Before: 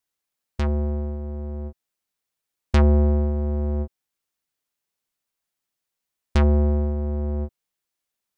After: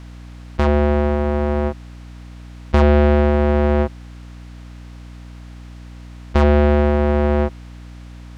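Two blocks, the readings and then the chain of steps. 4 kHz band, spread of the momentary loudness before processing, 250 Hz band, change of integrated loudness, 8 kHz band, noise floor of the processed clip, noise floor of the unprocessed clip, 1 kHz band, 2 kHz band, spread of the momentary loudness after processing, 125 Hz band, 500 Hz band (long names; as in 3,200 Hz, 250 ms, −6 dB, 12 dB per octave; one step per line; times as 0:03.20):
+7.5 dB, 16 LU, +8.0 dB, +6.0 dB, can't be measured, −37 dBFS, −84 dBFS, +13.5 dB, +12.5 dB, 10 LU, +4.0 dB, +12.0 dB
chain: compressor on every frequency bin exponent 0.6
mid-hump overdrive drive 16 dB, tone 2,400 Hz, clips at −8.5 dBFS
mains hum 60 Hz, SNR 18 dB
level +6.5 dB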